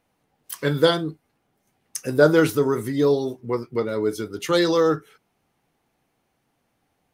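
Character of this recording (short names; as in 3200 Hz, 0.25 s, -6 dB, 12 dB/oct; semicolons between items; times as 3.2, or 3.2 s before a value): noise floor -72 dBFS; spectral tilt -4.5 dB/oct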